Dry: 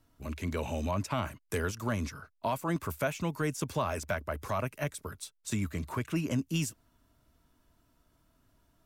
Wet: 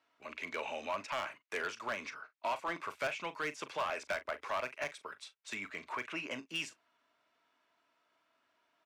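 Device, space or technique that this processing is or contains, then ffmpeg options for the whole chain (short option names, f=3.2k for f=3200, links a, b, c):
megaphone: -filter_complex "[0:a]highpass=630,lowpass=3.9k,equalizer=f=2.3k:t=o:w=0.6:g=5.5,asoftclip=type=hard:threshold=-30dB,asplit=2[a][b];[b]adelay=40,volume=-13.5dB[c];[a][c]amix=inputs=2:normalize=0"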